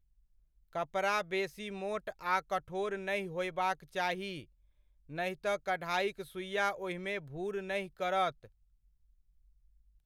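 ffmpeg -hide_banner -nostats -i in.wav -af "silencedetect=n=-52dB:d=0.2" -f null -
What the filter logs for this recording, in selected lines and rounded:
silence_start: 0.00
silence_end: 0.73 | silence_duration: 0.73
silence_start: 4.44
silence_end: 5.09 | silence_duration: 0.65
silence_start: 8.48
silence_end: 10.05 | silence_duration: 1.58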